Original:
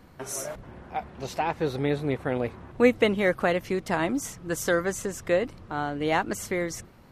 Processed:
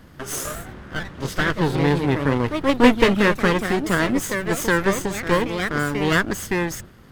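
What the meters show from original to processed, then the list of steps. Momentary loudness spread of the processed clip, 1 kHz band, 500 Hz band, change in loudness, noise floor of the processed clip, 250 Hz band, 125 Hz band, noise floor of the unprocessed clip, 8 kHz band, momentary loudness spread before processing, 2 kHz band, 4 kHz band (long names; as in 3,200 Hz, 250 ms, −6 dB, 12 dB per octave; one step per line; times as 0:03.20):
13 LU, +6.0 dB, +3.5 dB, +6.5 dB, −46 dBFS, +8.5 dB, +10.0 dB, −51 dBFS, +5.0 dB, 12 LU, +8.5 dB, +9.5 dB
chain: lower of the sound and its delayed copy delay 0.62 ms
delay with pitch and tempo change per echo 144 ms, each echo +2 semitones, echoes 2, each echo −6 dB
level +6.5 dB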